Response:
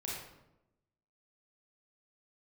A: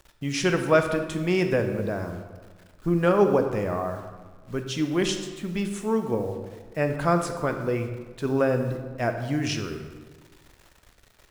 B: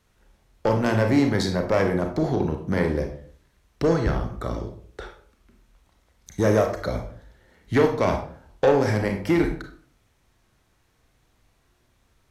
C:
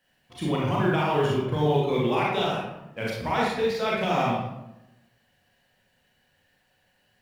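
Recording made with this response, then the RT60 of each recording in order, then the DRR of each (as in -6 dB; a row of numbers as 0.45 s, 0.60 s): C; 1.4 s, 0.50 s, 0.90 s; 5.5 dB, 3.5 dB, -5.5 dB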